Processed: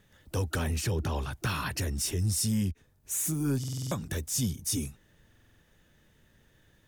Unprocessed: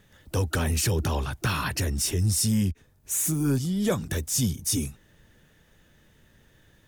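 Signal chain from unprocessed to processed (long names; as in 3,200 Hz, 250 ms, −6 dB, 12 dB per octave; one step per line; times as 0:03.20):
0:00.67–0:01.16: high-shelf EQ 5,400 Hz −7 dB
buffer that repeats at 0:03.59/0:05.28, samples 2,048, times 6
level −4.5 dB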